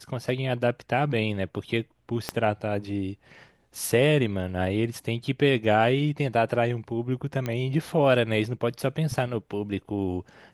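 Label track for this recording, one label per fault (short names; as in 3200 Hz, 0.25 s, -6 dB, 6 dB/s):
2.290000	2.290000	pop -11 dBFS
7.460000	7.460000	pop -16 dBFS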